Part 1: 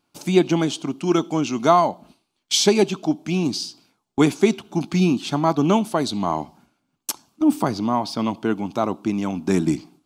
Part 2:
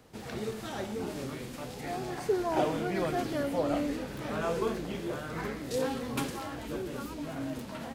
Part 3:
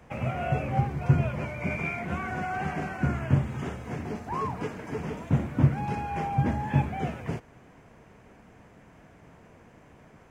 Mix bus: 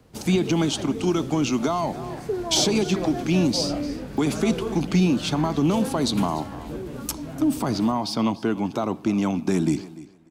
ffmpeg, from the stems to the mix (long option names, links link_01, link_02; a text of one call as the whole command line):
ffmpeg -i stem1.wav -i stem2.wav -i stem3.wav -filter_complex "[0:a]alimiter=limit=-13dB:level=0:latency=1:release=55,acontrast=85,volume=-5dB,asplit=2[link_01][link_02];[link_02]volume=-19dB[link_03];[1:a]lowshelf=frequency=360:gain=10,volume=-2.5dB[link_04];[2:a]acompressor=threshold=-37dB:ratio=6,adelay=1950,volume=-13.5dB[link_05];[link_03]aecho=0:1:294|588|882:1|0.18|0.0324[link_06];[link_01][link_04][link_05][link_06]amix=inputs=4:normalize=0,acrossover=split=260|3000[link_07][link_08][link_09];[link_08]acompressor=threshold=-22dB:ratio=6[link_10];[link_07][link_10][link_09]amix=inputs=3:normalize=0" out.wav